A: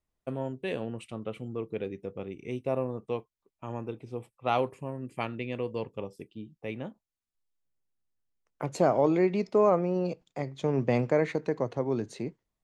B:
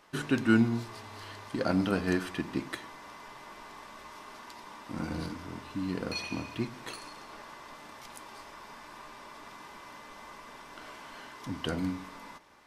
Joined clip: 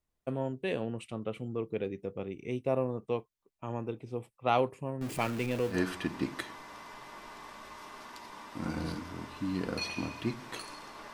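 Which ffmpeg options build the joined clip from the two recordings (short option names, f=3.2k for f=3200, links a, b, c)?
-filter_complex "[0:a]asettb=1/sr,asplit=3[a][b][c];[a]atrim=end=5.014[d];[b]atrim=start=5.01:end=5.83,asetpts=PTS-STARTPTS,afade=t=in:d=0.004:c=qsin,afade=t=out:st=0.816:d=0.004:c=qsin,aeval=exprs='val(0)+0.5*0.0158*sgn(val(0))':c=same[e];[c]atrim=start=5.826[f];[d][e]acrossfade=d=0.004:c1=hsin:c2=qsin[g];[g][f]acrossfade=d=0.004:c1=qsin:c2=hsin,apad=whole_dur=11.13,atrim=end=11.13,atrim=end=5.83,asetpts=PTS-STARTPTS[h];[1:a]atrim=start=1.99:end=7.47,asetpts=PTS-STARTPTS[i];[h][i]acrossfade=d=0.18:c1=tri:c2=tri"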